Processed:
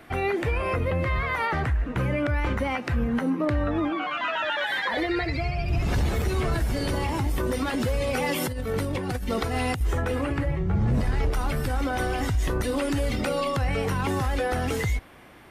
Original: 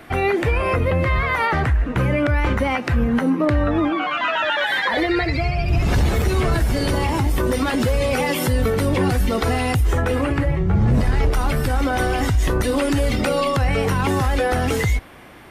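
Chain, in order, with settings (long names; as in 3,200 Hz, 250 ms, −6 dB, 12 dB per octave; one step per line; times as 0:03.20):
0:08.04–0:09.81: compressor whose output falls as the input rises −20 dBFS, ratio −0.5
level −6.5 dB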